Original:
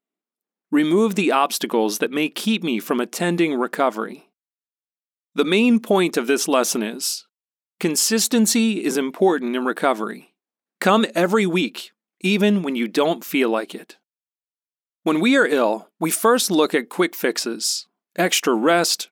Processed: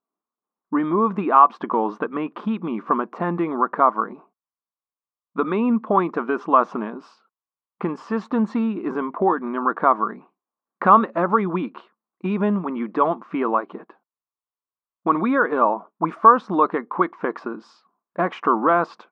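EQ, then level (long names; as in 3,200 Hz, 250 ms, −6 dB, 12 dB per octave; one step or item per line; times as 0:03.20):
dynamic equaliser 480 Hz, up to −4 dB, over −26 dBFS, Q 0.7
low-pass with resonance 1,100 Hz, resonance Q 5.1
high-frequency loss of the air 67 metres
−2.0 dB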